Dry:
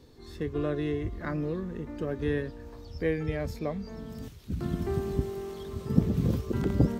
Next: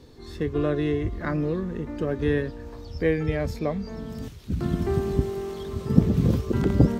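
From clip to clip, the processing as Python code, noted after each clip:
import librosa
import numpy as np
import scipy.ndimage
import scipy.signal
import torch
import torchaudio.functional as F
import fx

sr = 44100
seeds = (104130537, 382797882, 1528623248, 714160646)

y = fx.high_shelf(x, sr, hz=12000.0, db=-6.5)
y = F.gain(torch.from_numpy(y), 5.5).numpy()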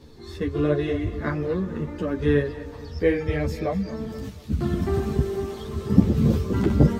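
y = fx.echo_feedback(x, sr, ms=239, feedback_pct=45, wet_db=-14.5)
y = fx.ensemble(y, sr)
y = F.gain(torch.from_numpy(y), 4.5).numpy()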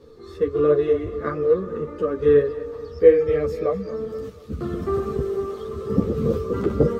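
y = fx.small_body(x, sr, hz=(470.0, 1200.0), ring_ms=30, db=17)
y = F.gain(torch.from_numpy(y), -6.5).numpy()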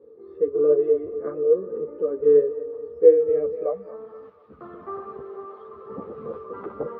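y = scipy.signal.sosfilt(scipy.signal.butter(2, 3100.0, 'lowpass', fs=sr, output='sos'), x)
y = fx.filter_sweep_bandpass(y, sr, from_hz=450.0, to_hz=940.0, start_s=3.39, end_s=4.08, q=2.0)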